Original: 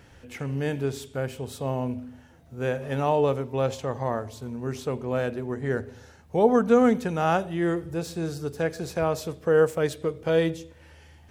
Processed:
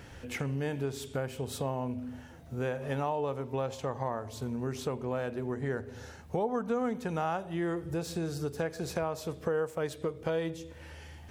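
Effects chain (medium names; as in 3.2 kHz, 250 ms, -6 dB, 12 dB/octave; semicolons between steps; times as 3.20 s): dynamic bell 950 Hz, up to +5 dB, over -38 dBFS, Q 1.6; compression 4:1, threshold -35 dBFS, peak gain reduction 18.5 dB; trim +3.5 dB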